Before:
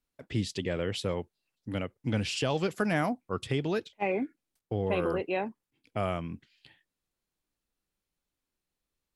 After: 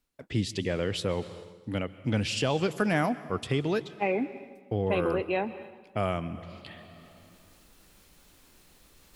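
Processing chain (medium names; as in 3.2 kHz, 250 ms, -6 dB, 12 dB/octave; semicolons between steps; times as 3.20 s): plate-style reverb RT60 1.6 s, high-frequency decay 0.95×, pre-delay 115 ms, DRR 16 dB; reverse; upward compressor, threshold -38 dBFS; reverse; trim +2 dB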